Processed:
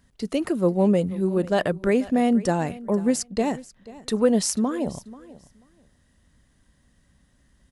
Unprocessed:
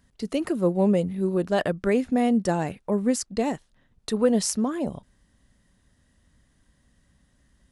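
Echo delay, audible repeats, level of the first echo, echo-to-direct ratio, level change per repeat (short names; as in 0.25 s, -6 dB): 0.487 s, 2, -19.0 dB, -19.0 dB, -15.5 dB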